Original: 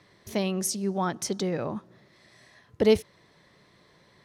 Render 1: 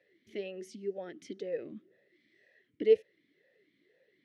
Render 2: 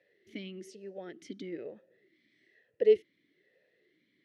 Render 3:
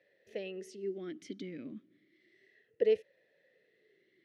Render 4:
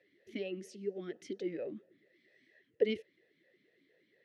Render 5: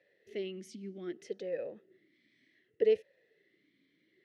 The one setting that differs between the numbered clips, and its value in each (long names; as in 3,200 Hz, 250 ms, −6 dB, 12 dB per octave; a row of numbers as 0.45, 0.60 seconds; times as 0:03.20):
formant filter swept between two vowels, speed: 2, 1.1, 0.31, 4.3, 0.65 Hertz